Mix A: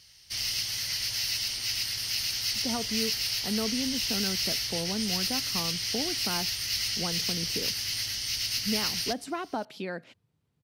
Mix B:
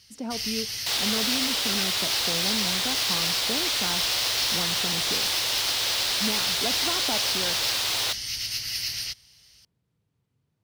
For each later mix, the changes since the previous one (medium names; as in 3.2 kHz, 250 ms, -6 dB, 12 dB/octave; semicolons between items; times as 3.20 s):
speech: entry -2.45 s; second sound: unmuted; reverb: on, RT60 0.35 s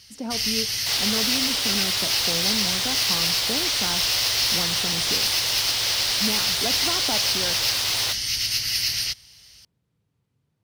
speech: send on; first sound +6.0 dB